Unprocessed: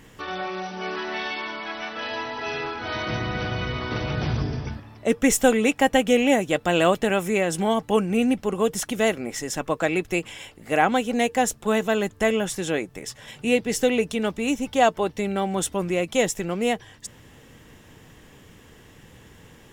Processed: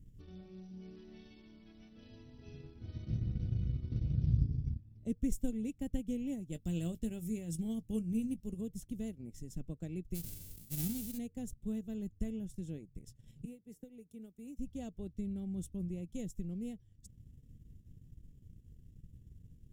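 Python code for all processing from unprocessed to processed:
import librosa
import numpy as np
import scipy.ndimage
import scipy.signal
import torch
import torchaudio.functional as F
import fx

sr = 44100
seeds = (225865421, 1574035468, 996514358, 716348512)

y = fx.chain(x, sr, fx.high_shelf(hz=2800.0, db=9.0),
    fx.doubler(ms=18.0, db=-11.0), at=(6.52, 8.61))
y = fx.envelope_flatten(y, sr, power=0.1, at=(10.14, 11.17), fade=0.02)
y = fx.peak_eq(y, sr, hz=13000.0, db=2.5, octaves=0.4, at=(10.14, 11.17), fade=0.02)
y = fx.sustainer(y, sr, db_per_s=26.0, at=(10.14, 11.17), fade=0.02)
y = fx.chain(y, sr, fx.highpass(hz=1100.0, slope=6),
    fx.peak_eq(hz=4000.0, db=-14.5, octaves=2.4),
    fx.band_squash(depth_pct=100), at=(13.45, 14.57))
y = fx.tone_stack(y, sr, knobs='10-0-1')
y = fx.transient(y, sr, attack_db=3, sustain_db=-8)
y = fx.curve_eq(y, sr, hz=(180.0, 1600.0, 14000.0), db=(0, -20, -7))
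y = F.gain(torch.from_numpy(y), 6.5).numpy()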